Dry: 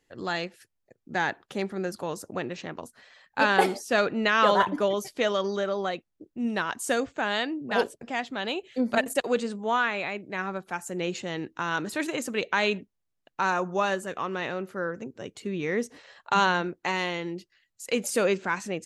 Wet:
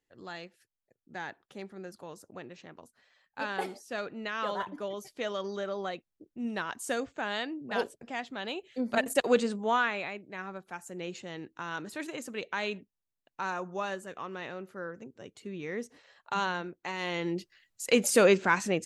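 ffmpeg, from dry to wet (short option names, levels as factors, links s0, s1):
-af "volume=4.47,afade=t=in:st=4.75:d=1.06:silence=0.473151,afade=t=in:st=8.86:d=0.47:silence=0.421697,afade=t=out:st=9.33:d=0.92:silence=0.316228,afade=t=in:st=16.97:d=0.4:silence=0.266073"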